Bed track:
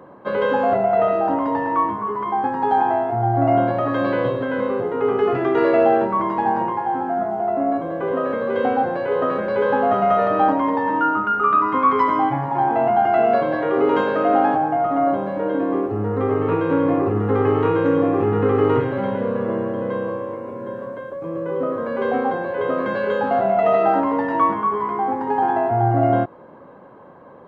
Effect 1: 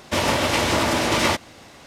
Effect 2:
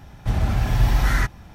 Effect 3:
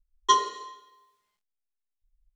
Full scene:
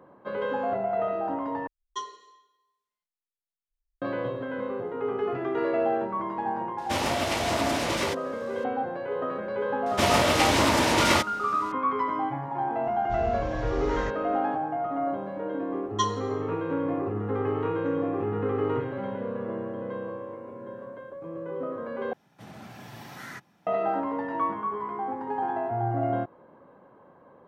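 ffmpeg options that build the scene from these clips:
-filter_complex "[3:a]asplit=2[s0][s1];[1:a]asplit=2[s2][s3];[2:a]asplit=2[s4][s5];[0:a]volume=0.316[s6];[s2]alimiter=limit=0.335:level=0:latency=1:release=491[s7];[s4]aresample=16000,aresample=44100[s8];[s5]highpass=f=160:w=0.5412,highpass=f=160:w=1.3066[s9];[s6]asplit=3[s10][s11][s12];[s10]atrim=end=1.674[s13];[s0]atrim=end=2.35,asetpts=PTS-STARTPTS,volume=0.188[s14];[s11]atrim=start=4.016:end=22.134[s15];[s9]atrim=end=1.54,asetpts=PTS-STARTPTS,volume=0.178[s16];[s12]atrim=start=23.666[s17];[s7]atrim=end=1.86,asetpts=PTS-STARTPTS,volume=0.447,afade=t=in:d=0.004:c=hsin,afade=t=out:st=1.856:d=0.004:c=hsin,adelay=6780[s18];[s3]atrim=end=1.86,asetpts=PTS-STARTPTS,volume=0.794,afade=t=in:d=0.004:c=hsin,afade=t=out:st=1.856:d=0.004:c=hsin,adelay=434826S[s19];[s8]atrim=end=1.54,asetpts=PTS-STARTPTS,volume=0.2,afade=t=in:d=0.004:c=hsin,afade=t=out:st=1.536:d=0.004:c=hsin,adelay=566244S[s20];[s1]atrim=end=2.35,asetpts=PTS-STARTPTS,volume=0.501,afade=t=in:d=0.004:c=hsin,afade=t=out:st=2.346:d=0.004:c=hsin,adelay=15700[s21];[s13][s14]acrossfade=d=0.004:c1=hsin:c2=hsin[s22];[s22][s15]acrossfade=d=0.004:c1=hsin:c2=hsin[s23];[s23][s16]acrossfade=d=0.004:c1=hsin:c2=hsin[s24];[s24][s17]acrossfade=d=0.004:c1=hsin:c2=hsin[s25];[s25][s18][s19][s20][s21]amix=inputs=5:normalize=0"

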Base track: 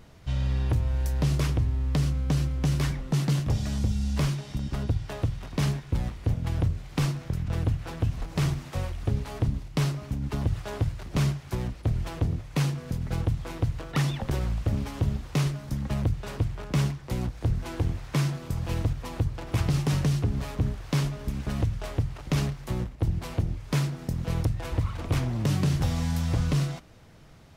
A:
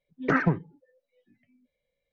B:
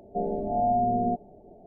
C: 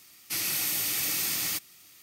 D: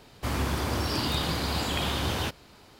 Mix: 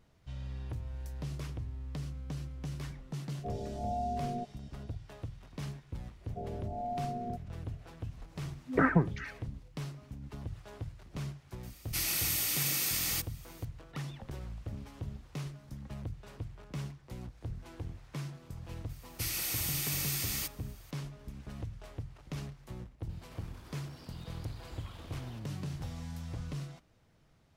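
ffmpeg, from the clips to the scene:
-filter_complex "[2:a]asplit=2[s0][s1];[3:a]asplit=2[s2][s3];[0:a]volume=0.188[s4];[1:a]acrossover=split=2400[s5][s6];[s6]adelay=390[s7];[s5][s7]amix=inputs=2:normalize=0[s8];[4:a]acompressor=threshold=0.0112:ratio=20:attack=0.13:release=58:knee=1:detection=peak[s9];[s0]atrim=end=1.66,asetpts=PTS-STARTPTS,volume=0.266,afade=t=in:d=0.004:c=hsin,afade=t=out:st=1.656:d=0.004:c=hsin,adelay=145089S[s10];[s1]atrim=end=1.66,asetpts=PTS-STARTPTS,volume=0.224,afade=t=in:d=0.004:c=hsin,afade=t=out:st=1.656:d=0.004:c=hsin,adelay=6210[s11];[s8]atrim=end=2.12,asetpts=PTS-STARTPTS,volume=0.794,afade=t=in:d=0.004:c=hsin,afade=t=out:st=2.116:d=0.004:c=hsin,adelay=8490[s12];[s2]atrim=end=2.02,asetpts=PTS-STARTPTS,volume=0.708,afade=t=in:d=0.004:c=hsin,afade=t=out:st=2.016:d=0.004:c=hsin,adelay=11630[s13];[s3]atrim=end=2.02,asetpts=PTS-STARTPTS,volume=0.501,afade=t=in:d=0.004:c=hsin,afade=t=out:st=2.016:d=0.004:c=hsin,adelay=18890[s14];[s9]atrim=end=2.79,asetpts=PTS-STARTPTS,volume=0.376,afade=t=in:d=0.004:c=hsin,afade=t=out:st=2.786:d=0.004:c=hsin,adelay=23090[s15];[s4][s10][s11][s12][s13][s14][s15]amix=inputs=7:normalize=0"

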